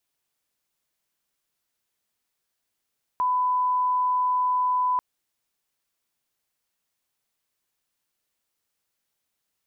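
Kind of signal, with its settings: line-up tone -20 dBFS 1.79 s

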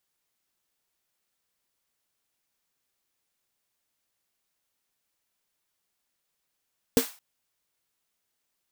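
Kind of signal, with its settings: snare drum length 0.22 s, tones 260 Hz, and 460 Hz, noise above 680 Hz, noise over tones -9 dB, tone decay 0.11 s, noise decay 0.36 s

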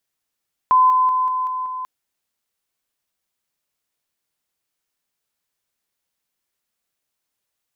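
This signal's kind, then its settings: level ladder 1.02 kHz -10 dBFS, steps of -3 dB, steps 6, 0.19 s 0.00 s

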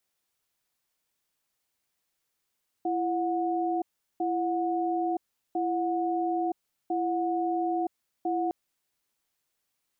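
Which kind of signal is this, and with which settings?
cadence 336 Hz, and 729 Hz, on 0.97 s, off 0.38 s, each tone -28 dBFS 5.66 s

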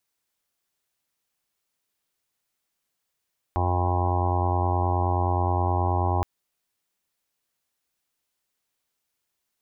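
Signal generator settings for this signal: steady additive tone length 2.67 s, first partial 89.5 Hz, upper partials -17.5/-13/-9/-17.5/-19/-11.5/-11/-5/-13/-9/-13 dB, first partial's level -23 dB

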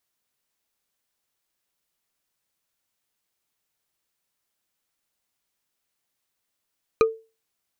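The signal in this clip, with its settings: wood hit bar, lowest mode 447 Hz, decay 0.30 s, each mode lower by 5 dB, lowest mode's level -11 dB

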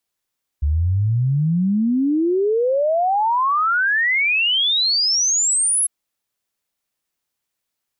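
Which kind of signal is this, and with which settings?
log sweep 70 Hz -> 11 kHz 5.25 s -15 dBFS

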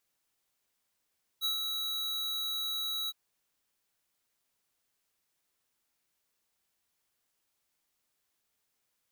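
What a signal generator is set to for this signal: ADSR square 3.89 kHz, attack 37 ms, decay 122 ms, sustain -4.5 dB, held 1.68 s, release 34 ms -30 dBFS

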